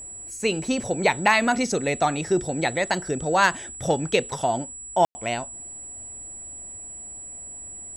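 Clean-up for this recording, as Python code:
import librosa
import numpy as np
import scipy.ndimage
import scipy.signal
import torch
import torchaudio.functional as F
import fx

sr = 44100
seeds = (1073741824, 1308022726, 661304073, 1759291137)

y = fx.fix_declip(x, sr, threshold_db=-7.0)
y = fx.notch(y, sr, hz=7800.0, q=30.0)
y = fx.fix_ambience(y, sr, seeds[0], print_start_s=6.91, print_end_s=7.41, start_s=5.05, end_s=5.15)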